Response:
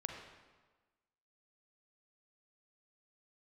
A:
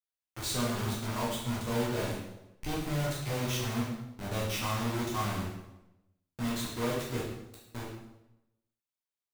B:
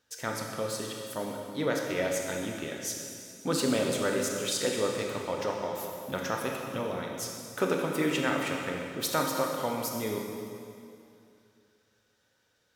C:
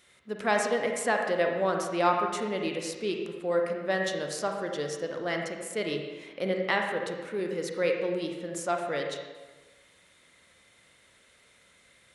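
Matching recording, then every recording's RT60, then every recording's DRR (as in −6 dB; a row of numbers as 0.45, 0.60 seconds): C; 0.95, 2.5, 1.3 seconds; −7.0, 0.5, 2.0 decibels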